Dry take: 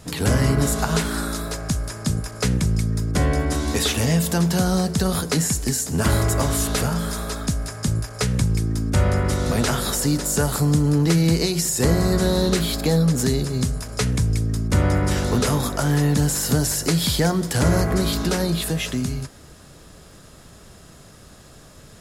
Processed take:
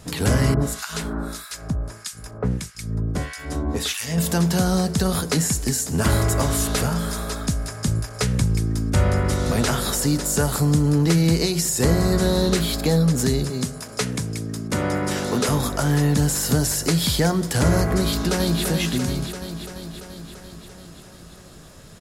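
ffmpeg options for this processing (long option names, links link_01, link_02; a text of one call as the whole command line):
ffmpeg -i in.wav -filter_complex "[0:a]asettb=1/sr,asplit=3[link_01][link_02][link_03];[link_01]atrim=end=0.544[link_04];[link_02]atrim=start=0.54:end=4.18,asetpts=PTS-STARTPTS,afade=type=in:duration=0.004:curve=qsin,afade=type=out:start_time=3.636:duration=0.004:curve=qsin,acrossover=split=1300[link_05][link_06];[link_05]aeval=exprs='val(0)*(1-1/2+1/2*cos(2*PI*1.6*n/s))':channel_layout=same[link_07];[link_06]aeval=exprs='val(0)*(1-1/2-1/2*cos(2*PI*1.6*n/s))':channel_layout=same[link_08];[link_07][link_08]amix=inputs=2:normalize=0[link_09];[link_03]atrim=start=4.176[link_10];[link_04][link_09]acrossfade=duration=0.004:curve1=hsin:curve2=qsin[link_11];[link_11][link_10]acrossfade=duration=0.004:curve1=qsin:curve2=hsin,asettb=1/sr,asplit=3[link_12][link_13][link_14];[link_12]atrim=end=13.504[link_15];[link_13]atrim=start=13.5:end=15.49,asetpts=PTS-STARTPTS,afade=type=in:duration=0.004:curve=qsin,afade=type=out:start_time=1.986:duration=0.004:curve=qsin,highpass=170[link_16];[link_14]atrim=start=15.486[link_17];[link_15][link_16]acrossfade=duration=0.004:curve1=hsin:curve2=qsin[link_18];[link_18][link_17]acrossfade=duration=0.004:curve1=qsin:curve2=hsin,asplit=2[link_19][link_20];[link_20]afade=type=in:start_time=18.05:duration=0.01,afade=type=out:start_time=18.64:duration=0.01,aecho=0:1:340|680|1020|1360|1700|2040|2380|2720|3060|3400|3740|4080:0.530884|0.371619|0.260133|0.182093|0.127465|0.0892257|0.062458|0.0437206|0.0306044|0.0214231|0.0149962|0.0104973[link_21];[link_19][link_21]amix=inputs=2:normalize=0" out.wav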